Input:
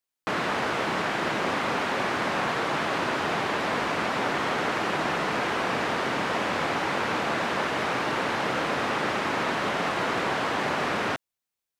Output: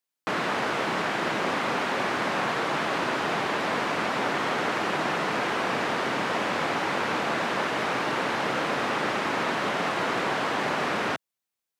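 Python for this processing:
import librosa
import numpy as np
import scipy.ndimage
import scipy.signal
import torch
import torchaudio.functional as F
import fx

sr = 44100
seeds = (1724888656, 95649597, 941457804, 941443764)

y = scipy.signal.sosfilt(scipy.signal.butter(2, 110.0, 'highpass', fs=sr, output='sos'), x)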